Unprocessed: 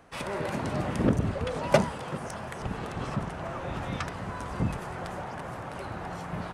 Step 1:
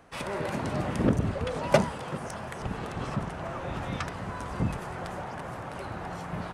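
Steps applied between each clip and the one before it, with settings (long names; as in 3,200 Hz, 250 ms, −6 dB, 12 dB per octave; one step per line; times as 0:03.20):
no processing that can be heard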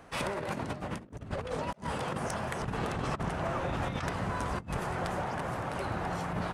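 compressor whose output falls as the input rises −34 dBFS, ratio −0.5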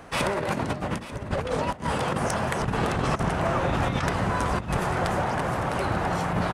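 single-tap delay 890 ms −14.5 dB
level +8 dB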